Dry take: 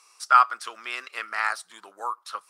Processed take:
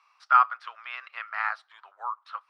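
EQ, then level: HPF 750 Hz 24 dB/oct; air absorption 350 m; high shelf 10000 Hz -6.5 dB; 0.0 dB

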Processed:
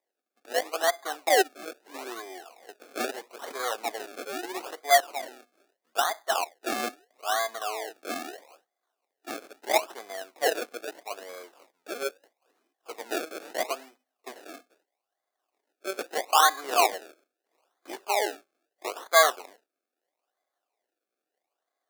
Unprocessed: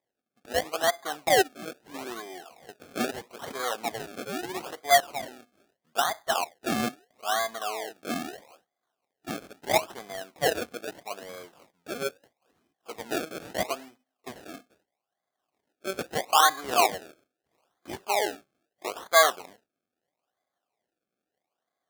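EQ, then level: HPF 310 Hz 24 dB/oct; notch 3200 Hz, Q 17; 0.0 dB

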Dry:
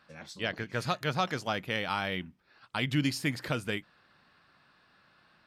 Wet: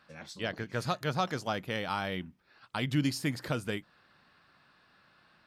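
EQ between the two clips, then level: dynamic EQ 2400 Hz, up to -5 dB, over -45 dBFS, Q 1.1; 0.0 dB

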